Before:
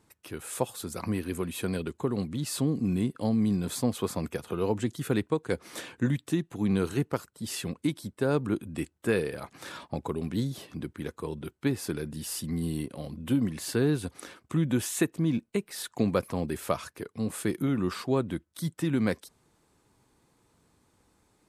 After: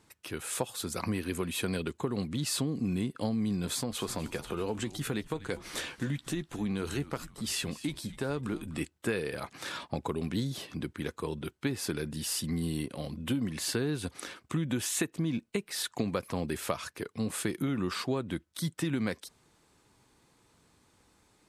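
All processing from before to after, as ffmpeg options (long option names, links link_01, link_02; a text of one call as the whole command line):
ffmpeg -i in.wav -filter_complex "[0:a]asettb=1/sr,asplit=3[link_01][link_02][link_03];[link_01]atrim=end=3.664[link_04];[link_02]atrim=start=3.66:end=8.81,asetpts=PTS-STARTPTS,afade=type=in:duration=0.004:curve=qsin,afade=type=out:start_time=5.146:duration=0.004:curve=qsin,acompressor=threshold=-32dB:ratio=2:attack=3.2:release=140:knee=1:detection=peak,asplit=2[link_05][link_06];[link_06]adelay=14,volume=-13dB[link_07];[link_05][link_07]amix=inputs=2:normalize=0,atrim=end_sample=227115,asplit=5[link_08][link_09][link_10][link_11][link_12];[link_09]adelay=247,afreqshift=-120,volume=-16.5dB[link_13];[link_10]adelay=494,afreqshift=-240,volume=-24.2dB[link_14];[link_11]adelay=741,afreqshift=-360,volume=-32dB[link_15];[link_12]adelay=988,afreqshift=-480,volume=-39.7dB[link_16];[link_08][link_13][link_14][link_15][link_16]amix=inputs=5:normalize=0,atrim=end_sample=227115[link_17];[link_03]atrim=start=8.806[link_18];[link_04][link_17]acrossfade=duration=0.004:curve1=hsin:curve2=qsin[link_19];[link_19][link_18]acrossfade=duration=0.004:curve1=qsin:curve2=hsin,lowpass=frequency=3200:poles=1,highshelf=frequency=2100:gain=11.5,acompressor=threshold=-27dB:ratio=6" out.wav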